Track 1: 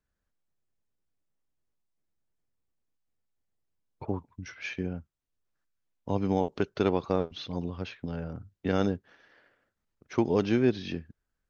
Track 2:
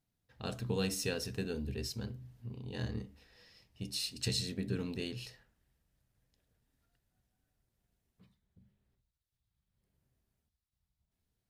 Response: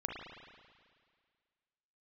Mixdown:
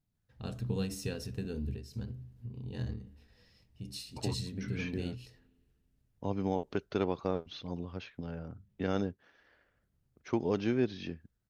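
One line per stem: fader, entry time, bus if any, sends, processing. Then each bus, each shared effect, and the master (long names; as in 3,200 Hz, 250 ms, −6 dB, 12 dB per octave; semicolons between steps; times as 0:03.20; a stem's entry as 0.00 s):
−5.5 dB, 0.15 s, no send, no processing
−6.0 dB, 0.00 s, send −22 dB, low-shelf EQ 290 Hz +11 dB; every ending faded ahead of time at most 100 dB per second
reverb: on, RT60 1.9 s, pre-delay 35 ms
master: no processing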